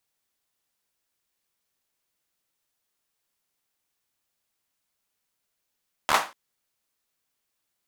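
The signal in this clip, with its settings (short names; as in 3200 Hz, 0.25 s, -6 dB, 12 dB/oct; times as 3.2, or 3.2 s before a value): hand clap length 0.24 s, bursts 5, apart 13 ms, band 990 Hz, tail 0.30 s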